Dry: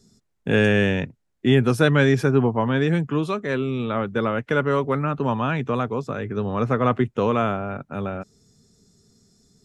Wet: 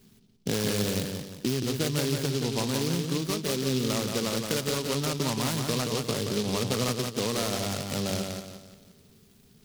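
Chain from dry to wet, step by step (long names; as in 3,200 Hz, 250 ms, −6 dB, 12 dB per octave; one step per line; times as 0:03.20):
downward compressor, threshold −26 dBFS, peak gain reduction 13.5 dB
delay with a low-pass on its return 174 ms, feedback 40%, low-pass 2,900 Hz, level −4.5 dB
short delay modulated by noise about 4,000 Hz, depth 0.16 ms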